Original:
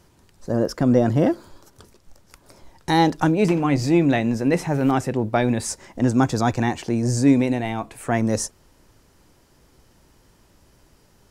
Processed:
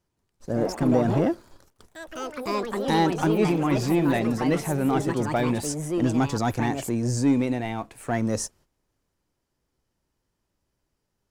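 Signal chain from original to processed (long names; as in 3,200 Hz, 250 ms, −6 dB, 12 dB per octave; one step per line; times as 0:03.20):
noise gate −48 dBFS, range −12 dB
leveller curve on the samples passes 1
delay with pitch and tempo change per echo 170 ms, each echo +4 semitones, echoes 3, each echo −6 dB
level −7.5 dB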